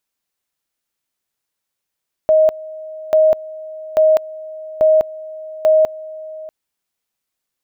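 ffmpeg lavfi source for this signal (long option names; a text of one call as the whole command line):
ffmpeg -f lavfi -i "aevalsrc='pow(10,(-8-20*gte(mod(t,0.84),0.2))/20)*sin(2*PI*627*t)':duration=4.2:sample_rate=44100" out.wav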